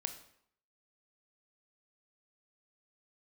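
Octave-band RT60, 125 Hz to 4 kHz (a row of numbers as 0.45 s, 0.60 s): 0.60 s, 0.65 s, 0.65 s, 0.70 s, 0.60 s, 0.55 s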